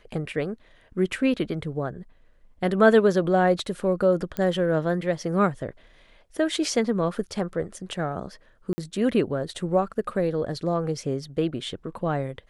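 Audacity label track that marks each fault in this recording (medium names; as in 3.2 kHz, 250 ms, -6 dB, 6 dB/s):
4.370000	4.370000	pop -15 dBFS
8.730000	8.780000	dropout 50 ms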